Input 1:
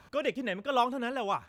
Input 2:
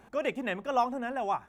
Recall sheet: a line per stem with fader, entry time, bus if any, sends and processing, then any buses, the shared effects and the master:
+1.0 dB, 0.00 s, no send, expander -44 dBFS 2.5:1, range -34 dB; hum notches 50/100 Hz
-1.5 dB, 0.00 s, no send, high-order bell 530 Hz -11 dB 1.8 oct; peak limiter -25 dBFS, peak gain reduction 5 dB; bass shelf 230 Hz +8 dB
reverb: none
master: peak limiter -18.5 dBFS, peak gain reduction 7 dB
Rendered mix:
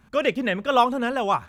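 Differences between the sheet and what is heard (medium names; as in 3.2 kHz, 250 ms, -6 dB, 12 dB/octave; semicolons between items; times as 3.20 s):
stem 1 +1.0 dB -> +7.5 dB; master: missing peak limiter -18.5 dBFS, peak gain reduction 7 dB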